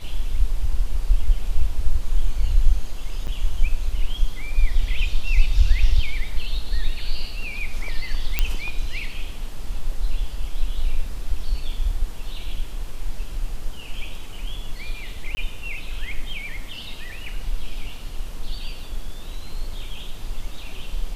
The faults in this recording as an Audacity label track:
3.270000	3.280000	dropout 8.4 ms
8.390000	8.390000	pop -5 dBFS
15.350000	15.370000	dropout 20 ms

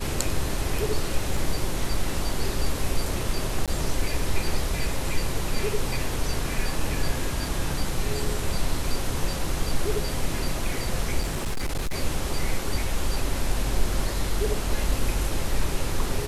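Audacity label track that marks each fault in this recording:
1.370000	1.370000	dropout 2.6 ms
3.660000	3.680000	dropout 17 ms
11.210000	11.950000	clipped -22.5 dBFS

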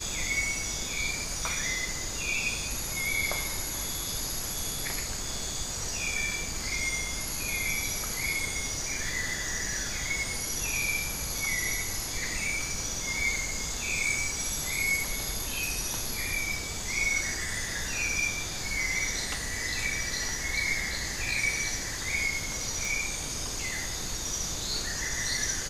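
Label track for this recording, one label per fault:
11.380000	11.380000	dropout 3.1 ms
22.850000	22.850000	pop

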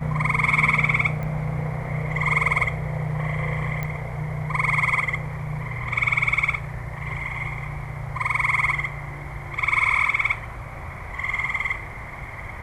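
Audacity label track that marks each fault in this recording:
1.230000	1.230000	pop -21 dBFS
3.830000	3.830000	pop -15 dBFS

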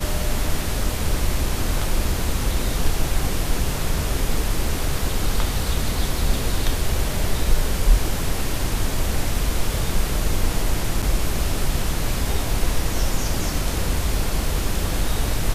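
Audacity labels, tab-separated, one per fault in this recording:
11.020000	11.030000	dropout 6.3 ms

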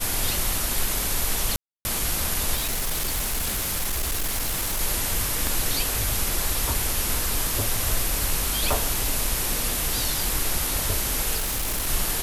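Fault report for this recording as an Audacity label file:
1.560000	1.850000	dropout 290 ms
2.550000	4.810000	clipped -22 dBFS
5.470000	5.470000	pop
8.730000	8.730000	pop
11.360000	11.880000	clipped -22.5 dBFS

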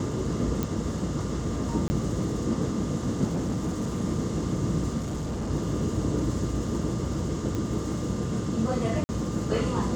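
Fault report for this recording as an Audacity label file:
0.630000	0.630000	pop
1.880000	1.900000	dropout 20 ms
3.260000	4.010000	clipped -24 dBFS
4.970000	5.510000	clipped -27.5 dBFS
7.550000	7.550000	pop -19 dBFS
9.040000	9.090000	dropout 50 ms

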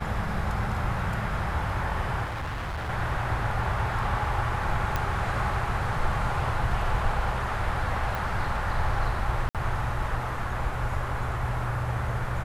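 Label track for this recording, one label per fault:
2.240000	2.900000	clipped -29.5 dBFS
4.960000	4.960000	pop -13 dBFS
8.150000	8.150000	pop
9.490000	9.550000	dropout 57 ms

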